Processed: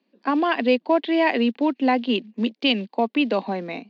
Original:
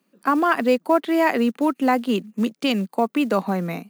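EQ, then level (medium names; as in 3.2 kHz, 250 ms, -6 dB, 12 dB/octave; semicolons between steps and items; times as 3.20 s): elliptic band-pass 230–4500 Hz, stop band 40 dB; peaking EQ 1.3 kHz -13.5 dB 0.36 oct; dynamic bell 3 kHz, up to +7 dB, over -44 dBFS, Q 1.7; 0.0 dB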